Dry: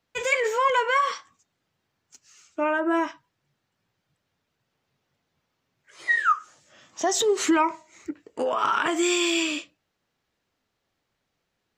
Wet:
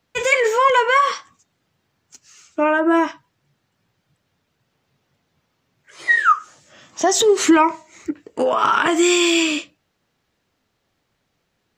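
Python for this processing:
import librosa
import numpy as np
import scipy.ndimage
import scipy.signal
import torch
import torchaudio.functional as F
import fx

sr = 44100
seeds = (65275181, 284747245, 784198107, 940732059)

y = fx.peak_eq(x, sr, hz=130.0, db=3.0, octaves=2.7)
y = y * librosa.db_to_amplitude(6.5)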